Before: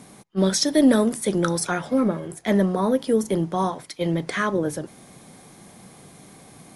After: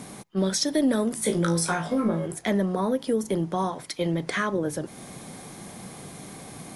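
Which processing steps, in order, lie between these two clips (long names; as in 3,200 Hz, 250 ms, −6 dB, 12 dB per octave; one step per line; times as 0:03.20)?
downward compressor 2 to 1, threshold −35 dBFS, peak gain reduction 12.5 dB
0:01.15–0:02.26: flutter between parallel walls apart 3.1 metres, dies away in 0.23 s
level +5.5 dB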